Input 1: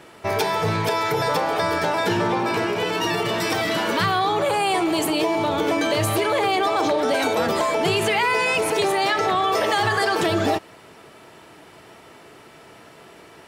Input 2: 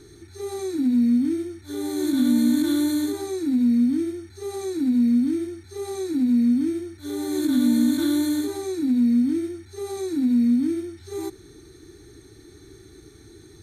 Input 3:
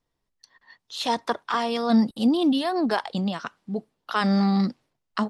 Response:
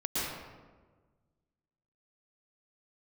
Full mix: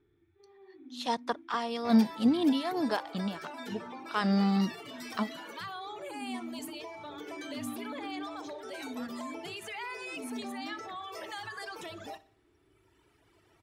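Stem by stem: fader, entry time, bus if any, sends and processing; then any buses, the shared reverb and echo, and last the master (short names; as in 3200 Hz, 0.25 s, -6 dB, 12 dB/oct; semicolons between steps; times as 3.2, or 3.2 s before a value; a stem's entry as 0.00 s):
-17.0 dB, 1.60 s, no send, echo send -18.5 dB, reverb removal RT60 1.9 s; low shelf 480 Hz -8.5 dB
-19.5 dB, 0.00 s, no send, echo send -8 dB, rippled Chebyshev low-pass 3500 Hz, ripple 3 dB; auto duck -18 dB, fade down 1.25 s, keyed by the third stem
-3.0 dB, 0.00 s, no send, no echo send, upward expander 1.5:1, over -39 dBFS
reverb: off
echo: feedback echo 61 ms, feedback 45%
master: dry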